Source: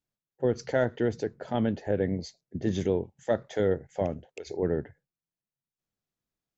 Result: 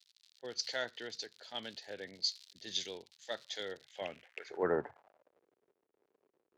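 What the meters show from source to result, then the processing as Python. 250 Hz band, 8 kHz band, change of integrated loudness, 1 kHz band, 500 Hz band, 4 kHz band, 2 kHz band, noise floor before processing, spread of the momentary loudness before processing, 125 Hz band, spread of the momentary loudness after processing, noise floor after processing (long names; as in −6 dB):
−17.5 dB, can't be measured, −9.5 dB, −7.5 dB, −12.0 dB, +9.0 dB, −4.0 dB, below −85 dBFS, 8 LU, −23.5 dB, 13 LU, −84 dBFS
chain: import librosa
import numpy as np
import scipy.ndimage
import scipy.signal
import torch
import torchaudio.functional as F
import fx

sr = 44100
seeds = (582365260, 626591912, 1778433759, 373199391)

y = fx.dmg_crackle(x, sr, seeds[0], per_s=130.0, level_db=-42.0)
y = fx.filter_sweep_bandpass(y, sr, from_hz=4200.0, to_hz=410.0, start_s=3.79, end_s=5.45, q=3.3)
y = fx.band_widen(y, sr, depth_pct=40)
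y = y * librosa.db_to_amplitude(11.0)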